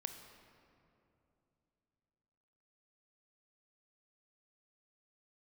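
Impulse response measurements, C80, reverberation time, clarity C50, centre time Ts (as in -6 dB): 8.5 dB, 2.9 s, 7.5 dB, 35 ms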